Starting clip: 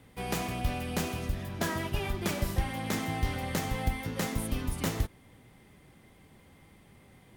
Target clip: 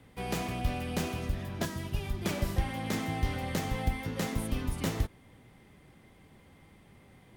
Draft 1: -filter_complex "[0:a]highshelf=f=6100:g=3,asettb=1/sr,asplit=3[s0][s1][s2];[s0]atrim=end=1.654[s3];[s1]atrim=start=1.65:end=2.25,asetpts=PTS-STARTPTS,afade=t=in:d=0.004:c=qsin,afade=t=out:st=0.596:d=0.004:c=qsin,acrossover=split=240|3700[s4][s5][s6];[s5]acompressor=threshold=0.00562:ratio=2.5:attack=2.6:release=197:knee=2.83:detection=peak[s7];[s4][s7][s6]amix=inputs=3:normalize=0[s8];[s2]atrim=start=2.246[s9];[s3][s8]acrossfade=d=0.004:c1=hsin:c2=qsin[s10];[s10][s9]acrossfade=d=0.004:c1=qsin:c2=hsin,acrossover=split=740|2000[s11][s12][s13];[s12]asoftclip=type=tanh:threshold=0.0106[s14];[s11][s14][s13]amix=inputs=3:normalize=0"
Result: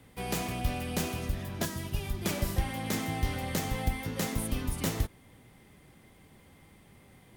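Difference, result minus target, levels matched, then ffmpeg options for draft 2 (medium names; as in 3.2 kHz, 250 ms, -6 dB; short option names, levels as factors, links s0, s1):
8 kHz band +4.5 dB
-filter_complex "[0:a]highshelf=f=6100:g=-5,asettb=1/sr,asplit=3[s0][s1][s2];[s0]atrim=end=1.654[s3];[s1]atrim=start=1.65:end=2.25,asetpts=PTS-STARTPTS,afade=t=in:d=0.004:c=qsin,afade=t=out:st=0.596:d=0.004:c=qsin,acrossover=split=240|3700[s4][s5][s6];[s5]acompressor=threshold=0.00562:ratio=2.5:attack=2.6:release=197:knee=2.83:detection=peak[s7];[s4][s7][s6]amix=inputs=3:normalize=0[s8];[s2]atrim=start=2.246[s9];[s3][s8]acrossfade=d=0.004:c1=hsin:c2=qsin[s10];[s10][s9]acrossfade=d=0.004:c1=qsin:c2=hsin,acrossover=split=740|2000[s11][s12][s13];[s12]asoftclip=type=tanh:threshold=0.0106[s14];[s11][s14][s13]amix=inputs=3:normalize=0"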